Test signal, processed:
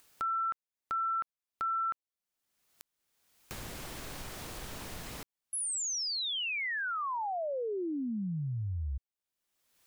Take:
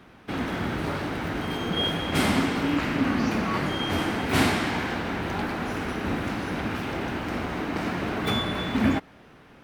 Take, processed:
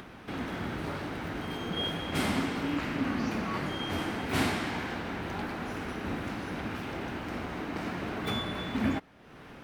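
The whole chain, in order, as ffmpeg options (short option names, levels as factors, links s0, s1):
-af "acompressor=mode=upward:threshold=0.0282:ratio=2.5,volume=0.473"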